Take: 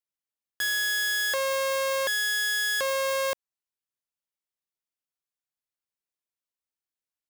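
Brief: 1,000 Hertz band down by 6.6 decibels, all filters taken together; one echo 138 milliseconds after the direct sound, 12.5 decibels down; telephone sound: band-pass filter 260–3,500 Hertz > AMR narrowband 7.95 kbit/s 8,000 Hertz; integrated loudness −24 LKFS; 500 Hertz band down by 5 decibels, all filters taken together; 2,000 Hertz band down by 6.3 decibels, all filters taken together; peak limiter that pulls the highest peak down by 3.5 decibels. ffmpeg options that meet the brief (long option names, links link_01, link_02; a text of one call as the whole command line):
ffmpeg -i in.wav -af "equalizer=frequency=500:width_type=o:gain=-3.5,equalizer=frequency=1000:width_type=o:gain=-5,equalizer=frequency=2000:width_type=o:gain=-5.5,alimiter=limit=-23.5dB:level=0:latency=1,highpass=260,lowpass=3500,aecho=1:1:138:0.237,volume=12.5dB" -ar 8000 -c:a libopencore_amrnb -b:a 7950 out.amr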